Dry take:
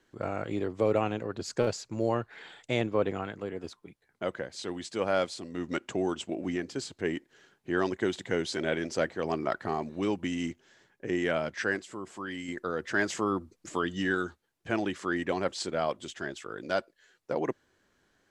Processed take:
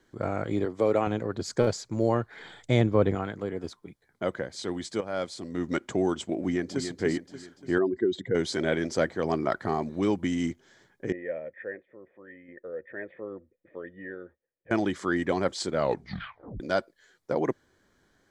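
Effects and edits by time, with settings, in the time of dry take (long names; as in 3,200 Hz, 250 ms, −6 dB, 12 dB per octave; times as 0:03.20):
0:00.65–0:01.07: high-pass filter 260 Hz 6 dB per octave
0:02.39–0:03.15: low-shelf EQ 130 Hz +11 dB
0:05.01–0:05.51: fade in, from −14 dB
0:06.41–0:06.88: delay throw 290 ms, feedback 50%, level −7.5 dB
0:07.78–0:08.35: expanding power law on the bin magnitudes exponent 2
0:11.12–0:14.71: formant resonators in series e
0:15.75: tape stop 0.85 s
whole clip: low-shelf EQ 330 Hz +4 dB; notch filter 2,700 Hz, Q 5.7; level +2 dB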